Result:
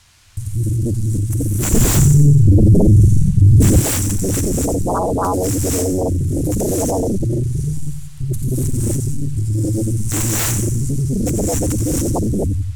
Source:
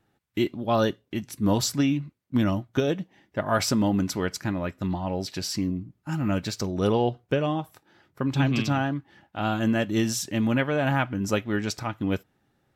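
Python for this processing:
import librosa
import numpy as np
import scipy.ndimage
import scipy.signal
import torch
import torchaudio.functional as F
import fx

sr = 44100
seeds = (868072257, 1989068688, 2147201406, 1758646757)

y = scipy.ndimage.median_filter(x, 9, mode='constant')
y = fx.leveller(y, sr, passes=2)
y = fx.over_compress(y, sr, threshold_db=-23.0, ratio=-1.0)
y = scipy.signal.sosfilt(scipy.signal.cheby2(4, 60, [270.0, 3100.0], 'bandstop', fs=sr, output='sos'), y)
y = fx.rev_gated(y, sr, seeds[0], gate_ms=310, shape='rising', drr_db=-7.0)
y = fx.quant_dither(y, sr, seeds[1], bits=12, dither='triangular')
y = scipy.signal.sosfilt(scipy.signal.butter(2, 7400.0, 'lowpass', fs=sr, output='sos'), y)
y = fx.peak_eq(y, sr, hz=480.0, db=-9.0, octaves=1.4)
y = fx.echo_feedback(y, sr, ms=90, feedback_pct=55, wet_db=-8)
y = fx.fold_sine(y, sr, drive_db=20, ceiling_db=-14.5)
y = fx.low_shelf(y, sr, hz=300.0, db=11.0, at=(1.73, 3.8))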